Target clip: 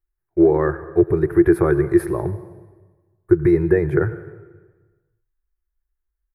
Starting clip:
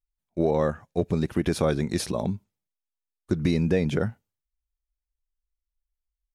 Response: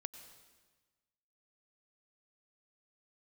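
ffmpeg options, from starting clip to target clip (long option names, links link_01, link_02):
-filter_complex "[0:a]firequalizer=gain_entry='entry(140,0);entry(240,-29);entry(340,10);entry(530,-9);entry(800,-4);entry(1700,3);entry(2900,-26);entry(4100,-26);entry(6400,-29);entry(11000,-5)':delay=0.05:min_phase=1,asplit=2[link_01][link_02];[1:a]atrim=start_sample=2205[link_03];[link_02][link_03]afir=irnorm=-1:irlink=0,volume=6dB[link_04];[link_01][link_04]amix=inputs=2:normalize=0"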